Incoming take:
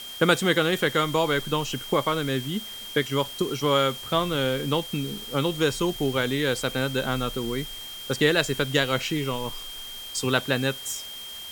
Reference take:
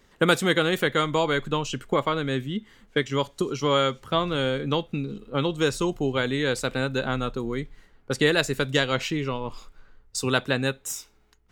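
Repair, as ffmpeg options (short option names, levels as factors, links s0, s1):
-af "bandreject=f=3200:w=30,afwtdn=0.0071"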